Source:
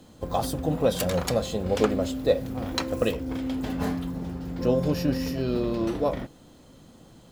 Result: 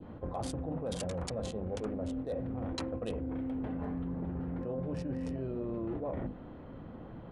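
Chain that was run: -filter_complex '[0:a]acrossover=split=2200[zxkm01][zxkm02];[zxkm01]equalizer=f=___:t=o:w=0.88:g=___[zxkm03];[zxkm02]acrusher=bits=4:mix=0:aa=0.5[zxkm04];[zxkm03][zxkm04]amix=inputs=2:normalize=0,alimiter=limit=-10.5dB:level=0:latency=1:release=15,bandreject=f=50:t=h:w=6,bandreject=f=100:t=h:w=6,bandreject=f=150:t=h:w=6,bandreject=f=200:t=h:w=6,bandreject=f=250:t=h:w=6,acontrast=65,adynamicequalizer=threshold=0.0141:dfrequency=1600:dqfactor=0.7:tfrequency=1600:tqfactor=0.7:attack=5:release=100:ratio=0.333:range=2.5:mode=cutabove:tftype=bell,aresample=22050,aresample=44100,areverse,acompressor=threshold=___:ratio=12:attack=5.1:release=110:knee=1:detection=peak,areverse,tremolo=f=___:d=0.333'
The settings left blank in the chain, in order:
85, 3, -32dB, 230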